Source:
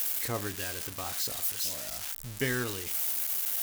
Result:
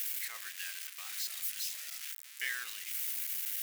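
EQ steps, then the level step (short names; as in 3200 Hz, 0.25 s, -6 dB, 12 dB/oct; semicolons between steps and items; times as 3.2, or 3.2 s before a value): resonant high-pass 2000 Hz, resonance Q 1.8; -6.0 dB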